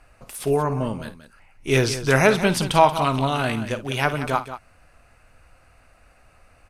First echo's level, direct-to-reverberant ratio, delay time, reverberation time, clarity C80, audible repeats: -14.0 dB, no reverb, 53 ms, no reverb, no reverb, 2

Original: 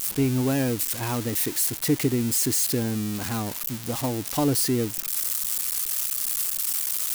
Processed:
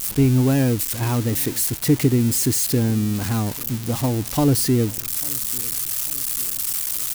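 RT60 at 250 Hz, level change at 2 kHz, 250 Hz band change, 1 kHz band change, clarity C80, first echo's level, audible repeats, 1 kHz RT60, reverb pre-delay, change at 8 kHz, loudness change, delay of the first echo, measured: no reverb, +2.0 dB, +5.5 dB, +2.5 dB, no reverb, -22.5 dB, 3, no reverb, no reverb, +2.0 dB, +4.0 dB, 844 ms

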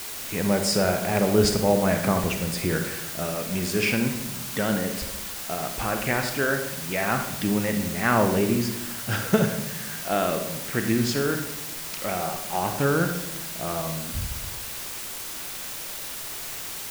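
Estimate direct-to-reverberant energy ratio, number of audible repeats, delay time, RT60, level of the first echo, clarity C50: 5.0 dB, no echo, no echo, 0.85 s, no echo, 6.5 dB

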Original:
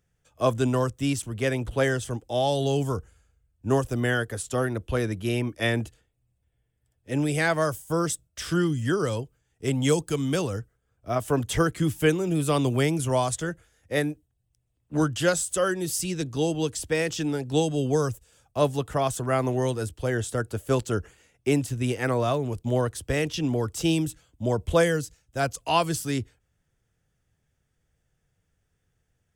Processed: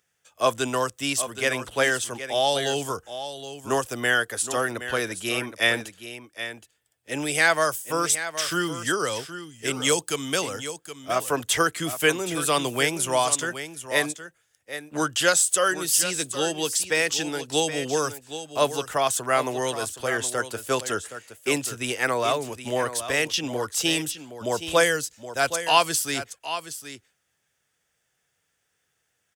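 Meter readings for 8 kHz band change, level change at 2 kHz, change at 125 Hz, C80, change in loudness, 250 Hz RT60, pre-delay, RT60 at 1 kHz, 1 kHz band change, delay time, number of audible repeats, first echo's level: +8.5 dB, +7.0 dB, -11.0 dB, no reverb, +2.0 dB, no reverb, no reverb, no reverb, +4.5 dB, 770 ms, 1, -11.5 dB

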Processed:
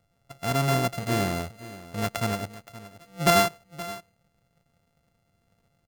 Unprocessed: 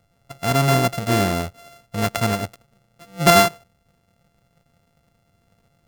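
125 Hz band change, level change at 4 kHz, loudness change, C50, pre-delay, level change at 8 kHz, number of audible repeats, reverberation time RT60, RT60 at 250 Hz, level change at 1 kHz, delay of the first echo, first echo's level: -6.5 dB, -6.5 dB, -7.0 dB, no reverb, no reverb, -6.5 dB, 1, no reverb, no reverb, -6.5 dB, 522 ms, -16.5 dB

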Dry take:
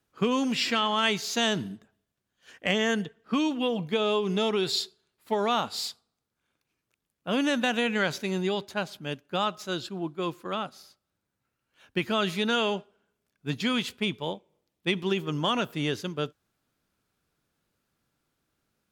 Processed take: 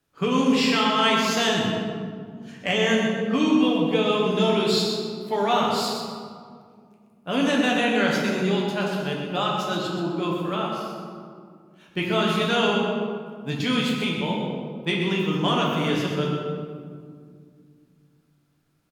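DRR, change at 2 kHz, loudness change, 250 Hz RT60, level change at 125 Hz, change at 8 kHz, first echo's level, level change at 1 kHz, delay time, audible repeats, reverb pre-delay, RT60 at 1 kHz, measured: -3.5 dB, +4.5 dB, +5.0 dB, 3.3 s, +7.5 dB, +3.0 dB, -8.0 dB, +6.0 dB, 125 ms, 1, 7 ms, 1.9 s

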